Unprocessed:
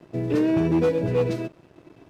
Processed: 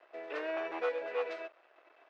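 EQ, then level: high-pass 680 Hz 24 dB/octave; low-pass 2.3 kHz 12 dB/octave; peaking EQ 930 Hz -7 dB 0.44 oct; 0.0 dB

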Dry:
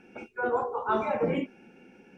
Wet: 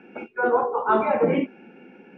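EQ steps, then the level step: tone controls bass +3 dB, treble -3 dB; three-band isolator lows -15 dB, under 170 Hz, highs -21 dB, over 3.4 kHz; peaking EQ 68 Hz -5.5 dB 0.98 oct; +7.0 dB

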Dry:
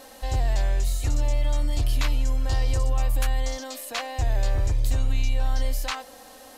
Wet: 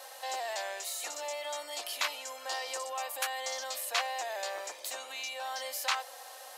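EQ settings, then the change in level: high-pass 580 Hz 24 dB/octave; 0.0 dB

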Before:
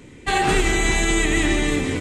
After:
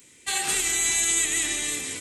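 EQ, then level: pre-emphasis filter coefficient 0.8; tilt EQ +2.5 dB/octave; 0.0 dB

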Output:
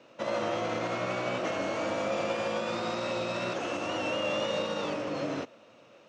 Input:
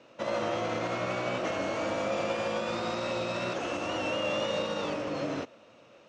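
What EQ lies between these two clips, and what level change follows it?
high-pass 91 Hz; 0.0 dB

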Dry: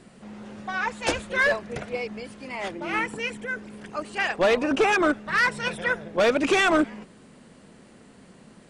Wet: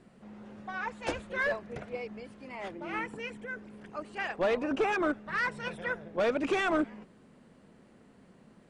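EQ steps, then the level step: treble shelf 3.1 kHz -9.5 dB; -7.0 dB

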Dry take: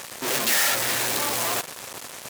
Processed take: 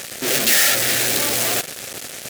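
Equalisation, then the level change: peaking EQ 1 kHz -13.5 dB 0.55 oct; +6.5 dB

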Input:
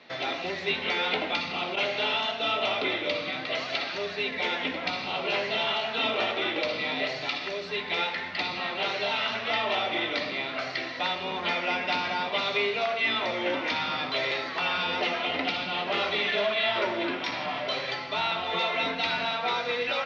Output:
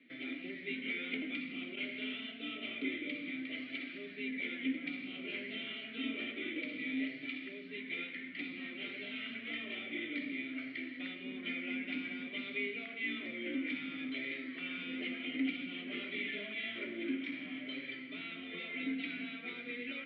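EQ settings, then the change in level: vowel filter i; distance through air 110 m; tone controls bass +1 dB, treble -15 dB; +3.5 dB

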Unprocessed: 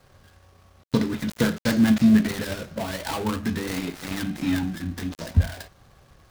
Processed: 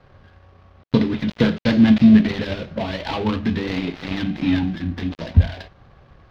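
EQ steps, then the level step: dynamic bell 1.4 kHz, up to -5 dB, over -46 dBFS, Q 1.6; dynamic bell 3.5 kHz, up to +6 dB, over -48 dBFS, Q 0.89; distance through air 270 m; +5.5 dB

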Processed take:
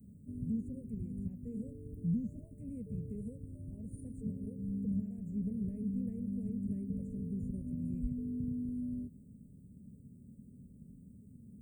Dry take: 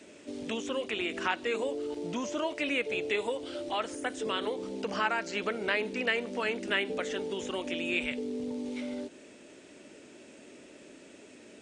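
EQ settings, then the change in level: inverse Chebyshev band-stop 790–5300 Hz, stop band 70 dB; static phaser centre 1.2 kHz, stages 6; +16.5 dB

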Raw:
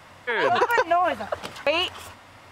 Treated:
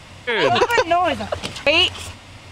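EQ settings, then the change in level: bass shelf 73 Hz +7.5 dB; bass shelf 480 Hz +10.5 dB; high-order bell 4.7 kHz +10 dB 2.4 oct; 0.0 dB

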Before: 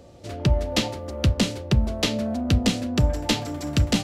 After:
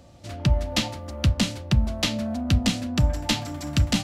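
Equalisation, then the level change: peaking EQ 430 Hz -12.5 dB 0.61 oct; 0.0 dB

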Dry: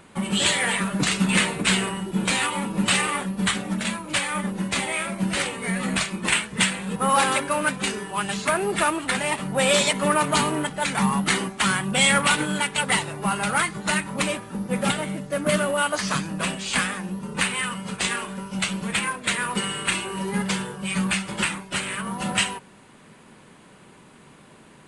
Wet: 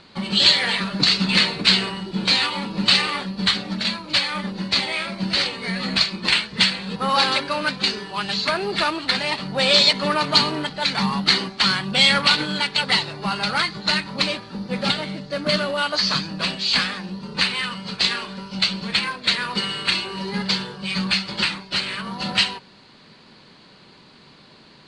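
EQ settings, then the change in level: resonant low-pass 4.4 kHz, resonance Q 8.9; -1.0 dB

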